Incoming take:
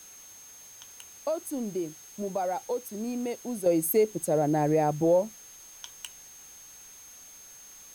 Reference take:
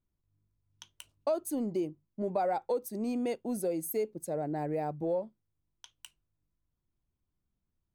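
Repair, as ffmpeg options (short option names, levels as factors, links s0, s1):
-af "bandreject=f=6400:w=30,afwtdn=0.0022,asetnsamples=n=441:p=0,asendcmd='3.66 volume volume -9dB',volume=1"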